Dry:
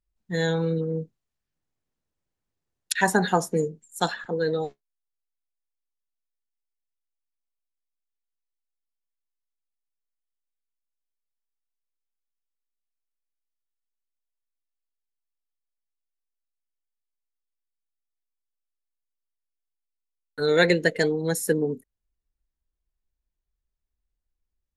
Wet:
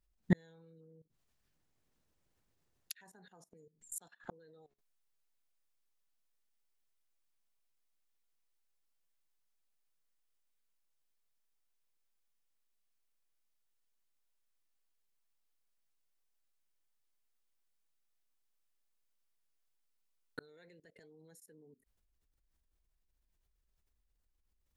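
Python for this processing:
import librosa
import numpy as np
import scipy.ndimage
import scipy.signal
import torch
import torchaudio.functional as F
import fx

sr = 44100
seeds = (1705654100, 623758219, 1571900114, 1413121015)

y = fx.gate_flip(x, sr, shuts_db=-23.0, range_db=-40)
y = fx.level_steps(y, sr, step_db=18)
y = y * 10.0 ** (12.0 / 20.0)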